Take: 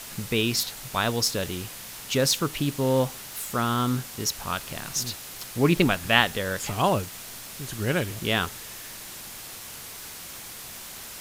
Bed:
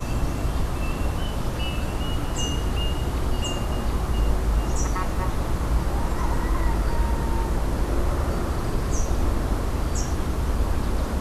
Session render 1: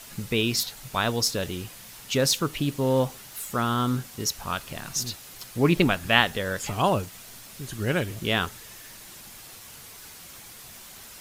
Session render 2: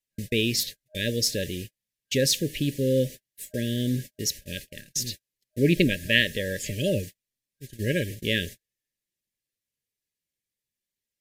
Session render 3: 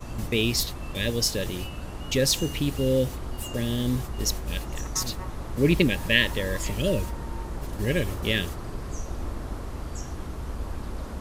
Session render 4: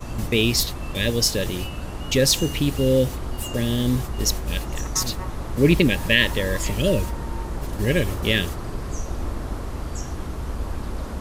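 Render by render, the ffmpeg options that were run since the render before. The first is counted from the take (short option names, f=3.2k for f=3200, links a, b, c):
-af "afftdn=nr=6:nf=-41"
-af "agate=range=-44dB:threshold=-34dB:ratio=16:detection=peak,afftfilt=real='re*(1-between(b*sr/4096,620,1600))':imag='im*(1-between(b*sr/4096,620,1600))':win_size=4096:overlap=0.75"
-filter_complex "[1:a]volume=-9.5dB[a];[0:a][a]amix=inputs=2:normalize=0"
-af "volume=4.5dB,alimiter=limit=-3dB:level=0:latency=1"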